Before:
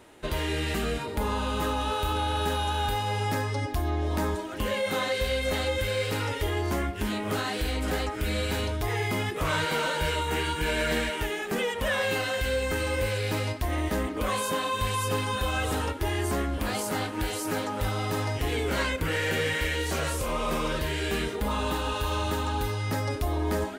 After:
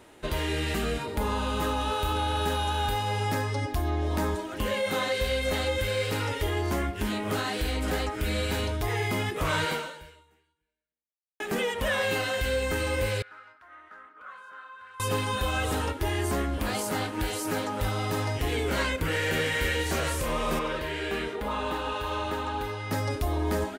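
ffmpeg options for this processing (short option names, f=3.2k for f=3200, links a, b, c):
-filter_complex "[0:a]asettb=1/sr,asplit=3[a][b][c];[a]atrim=end=13.224[d];[b]atrim=start=13.22:end=15,asetpts=PTS-STARTPTS,afade=t=in:d=0.004:c=qsin,afade=t=out:st=1.776:d=0.004:c=qsin,bandpass=f=1.4k:t=q:w=11[e];[c]atrim=start=14.996[f];[d][e]acrossfade=d=0.004:c1=hsin:c2=qsin[g];[g][f]acrossfade=d=0.004:c1=qsin:c2=hsin,asplit=2[h][i];[i]afade=t=in:st=19.03:d=0.01,afade=t=out:st=19.53:d=0.01,aecho=0:1:300|600|900|1200|1500|1800|2100|2400|2700|3000|3300:0.375837|0.263086|0.18416|0.128912|0.0902386|0.063167|0.0442169|0.0309518|0.0216663|0.0151664|0.0106165[j];[h][j]amix=inputs=2:normalize=0,asettb=1/sr,asplit=3[k][l][m];[k]atrim=end=20.594[n];[l]atrim=start=20.59:end=22.91,asetpts=PTS-STARTPTS,afade=t=in:d=0.004:c=qsin,afade=t=out:st=2.316:d=0.004:c=qsin,bass=f=250:g=-8,treble=f=4k:g=-10[o];[m]atrim=start=22.906[p];[n][o]acrossfade=d=0.004:c1=hsin:c2=qsin[q];[q][p]acrossfade=d=0.004:c1=qsin:c2=hsin,asplit=2[r][s];[r]atrim=end=11.4,asetpts=PTS-STARTPTS,afade=t=out:st=9.7:d=1.7:c=exp[t];[s]atrim=start=11.4,asetpts=PTS-STARTPTS,afade=t=in:d=0.004:c=hsin[u];[t][u]concat=n=2:v=0:a=1"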